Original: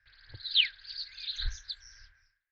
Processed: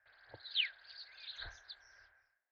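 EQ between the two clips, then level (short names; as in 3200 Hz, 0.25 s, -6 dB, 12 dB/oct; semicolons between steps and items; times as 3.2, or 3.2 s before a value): band-pass 690 Hz, Q 3.1; +13.0 dB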